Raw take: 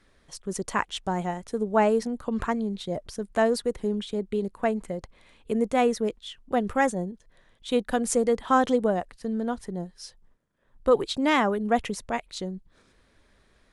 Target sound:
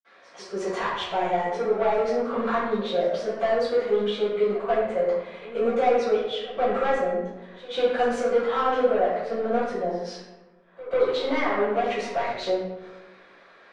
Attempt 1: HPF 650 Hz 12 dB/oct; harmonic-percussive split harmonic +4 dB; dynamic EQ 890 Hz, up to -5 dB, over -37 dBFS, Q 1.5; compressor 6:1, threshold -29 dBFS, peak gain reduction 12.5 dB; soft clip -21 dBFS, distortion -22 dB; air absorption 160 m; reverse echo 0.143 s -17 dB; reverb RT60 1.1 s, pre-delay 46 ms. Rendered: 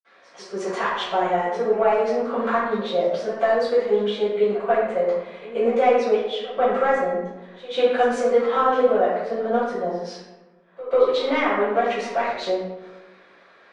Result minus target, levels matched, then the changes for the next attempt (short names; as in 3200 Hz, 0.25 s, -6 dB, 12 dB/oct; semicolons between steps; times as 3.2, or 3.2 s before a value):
soft clip: distortion -12 dB
change: soft clip -32 dBFS, distortion -10 dB